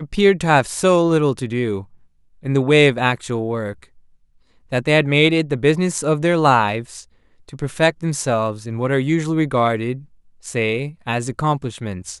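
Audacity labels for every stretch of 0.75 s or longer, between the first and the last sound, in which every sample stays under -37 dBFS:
3.840000	4.720000	silence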